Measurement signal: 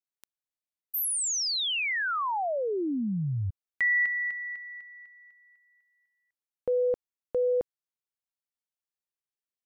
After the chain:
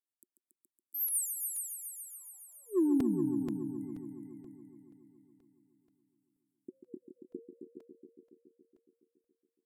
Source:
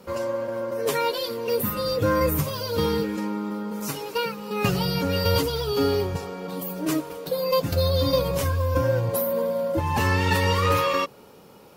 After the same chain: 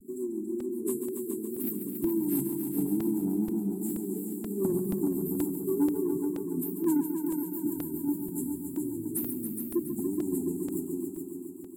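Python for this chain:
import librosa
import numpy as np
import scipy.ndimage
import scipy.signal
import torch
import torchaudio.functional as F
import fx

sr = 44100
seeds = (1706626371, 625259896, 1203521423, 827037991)

p1 = scipy.signal.sosfilt(scipy.signal.butter(4, 260.0, 'highpass', fs=sr, output='sos'), x)
p2 = fx.wow_flutter(p1, sr, seeds[0], rate_hz=2.1, depth_cents=140.0)
p3 = fx.tilt_shelf(p2, sr, db=3.5, hz=640.0)
p4 = fx.rider(p3, sr, range_db=3, speed_s=2.0)
p5 = scipy.signal.sosfilt(scipy.signal.ellip(5, 1.0, 50, [370.0, 7500.0], 'bandstop', fs=sr, output='sos'), p4)
p6 = 10.0 ** (-24.0 / 20.0) * np.tanh(p5 / 10.0 ** (-24.0 / 20.0))
p7 = fx.rotary(p6, sr, hz=7.5)
p8 = p7 + fx.echo_heads(p7, sr, ms=140, heads='all three', feedback_pct=58, wet_db=-9.5, dry=0)
p9 = fx.buffer_crackle(p8, sr, first_s=0.6, period_s=0.48, block=128, kind='repeat')
y = F.gain(torch.from_numpy(p9), 4.0).numpy()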